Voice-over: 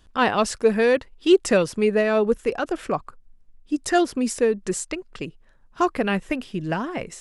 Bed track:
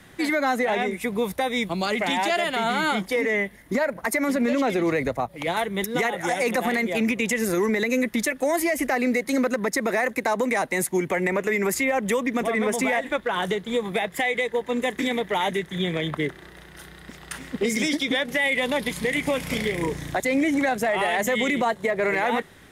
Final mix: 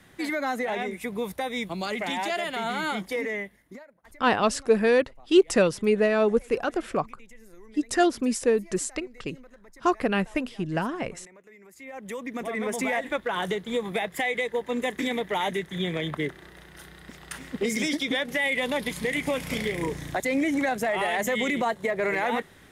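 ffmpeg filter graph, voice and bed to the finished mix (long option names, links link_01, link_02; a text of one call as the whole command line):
ffmpeg -i stem1.wav -i stem2.wav -filter_complex "[0:a]adelay=4050,volume=-2dB[link_01];[1:a]volume=20dB,afade=type=out:start_time=3.19:duration=0.66:silence=0.0707946,afade=type=in:start_time=11.73:duration=1.29:silence=0.0530884[link_02];[link_01][link_02]amix=inputs=2:normalize=0" out.wav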